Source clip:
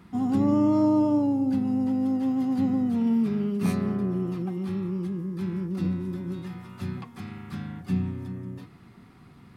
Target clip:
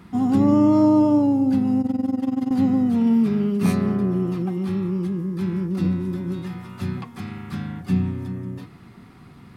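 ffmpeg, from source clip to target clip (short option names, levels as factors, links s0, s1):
-filter_complex "[0:a]asettb=1/sr,asplit=3[s0][s1][s2];[s0]atrim=end=1.814[s3];[s1]atrim=start=1.81:end=2.51,asetpts=PTS-STARTPTS,afade=t=in:d=0.004:c=qsin,afade=t=out:st=0.696:d=0.004:c=qsin,tremolo=f=21:d=0.889[s4];[s2]atrim=start=2.506[s5];[s3][s4]acrossfade=d=0.004:c1=hsin:c2=qsin[s6];[s6][s5]acrossfade=d=0.004:c1=qsin:c2=hsin,volume=1.88"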